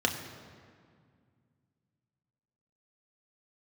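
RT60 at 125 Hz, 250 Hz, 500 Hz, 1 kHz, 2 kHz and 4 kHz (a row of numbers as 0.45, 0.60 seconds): 3.2, 2.9, 2.1, 2.0, 1.8, 1.4 seconds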